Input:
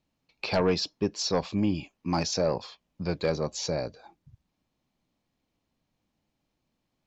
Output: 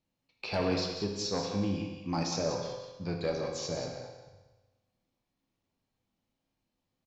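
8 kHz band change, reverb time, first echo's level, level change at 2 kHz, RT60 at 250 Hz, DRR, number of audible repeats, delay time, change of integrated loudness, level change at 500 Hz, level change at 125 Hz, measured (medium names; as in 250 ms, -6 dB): no reading, 1.2 s, -8.0 dB, -4.5 dB, 1.1 s, 0.5 dB, 1, 184 ms, -4.5 dB, -5.0 dB, -3.5 dB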